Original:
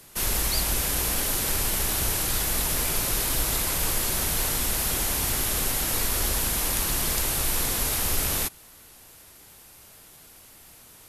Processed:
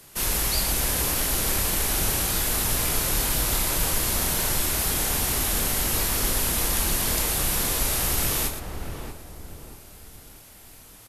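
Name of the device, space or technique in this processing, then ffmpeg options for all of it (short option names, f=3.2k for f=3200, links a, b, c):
slapback doubling: -filter_complex "[0:a]asplit=2[a][b];[b]adelay=632,lowpass=f=960:p=1,volume=-4.5dB,asplit=2[c][d];[d]adelay=632,lowpass=f=960:p=1,volume=0.43,asplit=2[e][f];[f]adelay=632,lowpass=f=960:p=1,volume=0.43,asplit=2[g][h];[h]adelay=632,lowpass=f=960:p=1,volume=0.43,asplit=2[i][j];[j]adelay=632,lowpass=f=960:p=1,volume=0.43[k];[a][c][e][g][i][k]amix=inputs=6:normalize=0,asplit=3[l][m][n];[m]adelay=27,volume=-7.5dB[o];[n]adelay=116,volume=-9.5dB[p];[l][o][p]amix=inputs=3:normalize=0"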